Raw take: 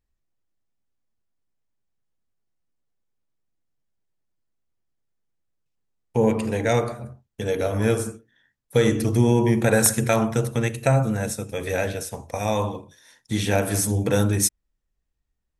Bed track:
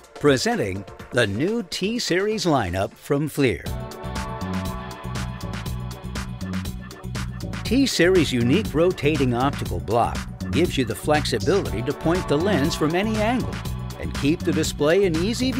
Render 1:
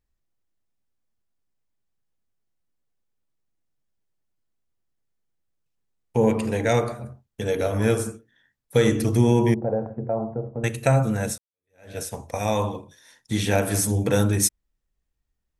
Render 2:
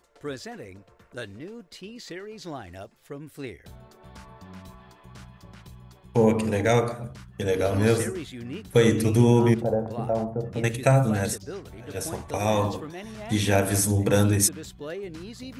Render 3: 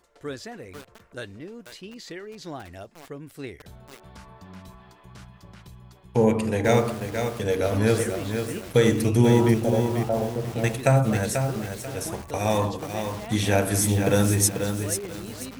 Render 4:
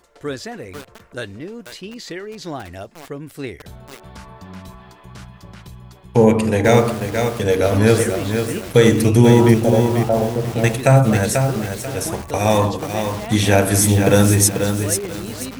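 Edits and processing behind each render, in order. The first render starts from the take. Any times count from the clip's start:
9.54–10.64 ladder low-pass 860 Hz, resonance 40%; 11.38–11.98 fade in exponential
add bed track -17 dB
lo-fi delay 0.489 s, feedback 35%, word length 6-bit, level -6 dB
gain +7.5 dB; limiter -1 dBFS, peak gain reduction 2.5 dB

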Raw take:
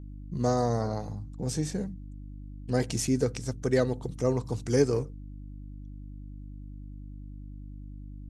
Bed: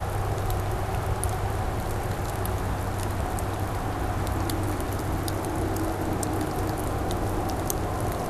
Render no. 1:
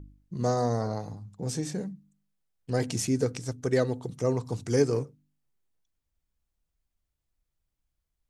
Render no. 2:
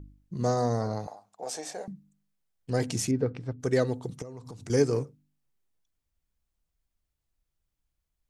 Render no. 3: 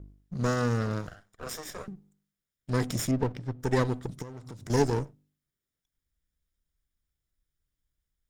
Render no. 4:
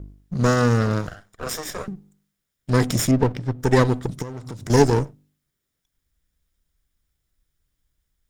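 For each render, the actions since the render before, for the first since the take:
de-hum 50 Hz, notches 6
1.07–1.88 resonant high-pass 680 Hz, resonance Q 4.3; 3.11–3.6 air absorption 410 m; 4.22–4.7 compressor 8:1, threshold -39 dBFS
minimum comb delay 0.56 ms
gain +9 dB

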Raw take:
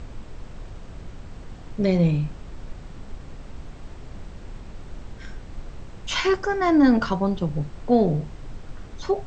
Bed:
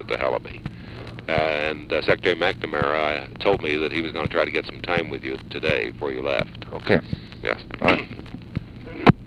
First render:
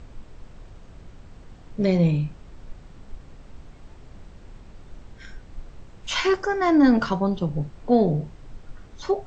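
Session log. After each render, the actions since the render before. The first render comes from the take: noise print and reduce 6 dB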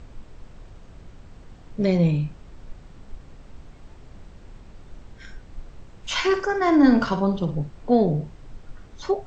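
6.25–7.55 flutter echo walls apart 9.7 m, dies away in 0.37 s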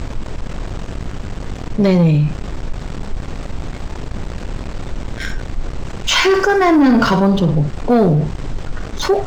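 sample leveller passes 2; fast leveller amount 50%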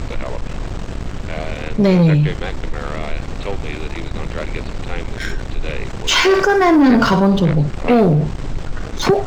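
add bed -7 dB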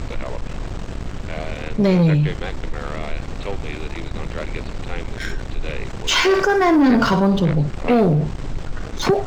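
gain -3 dB

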